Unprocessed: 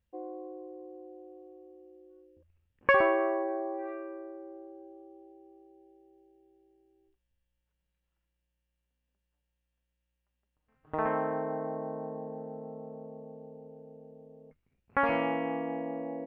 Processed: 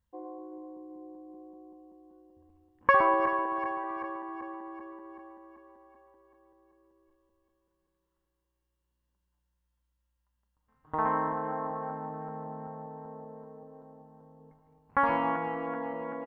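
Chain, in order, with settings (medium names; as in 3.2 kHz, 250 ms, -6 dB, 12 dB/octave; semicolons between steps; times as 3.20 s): backward echo that repeats 192 ms, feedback 75%, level -11 dB; graphic EQ with 31 bands 400 Hz -6 dB, 630 Hz -5 dB, 1 kHz +10 dB, 2.5 kHz -10 dB; delay 110 ms -15.5 dB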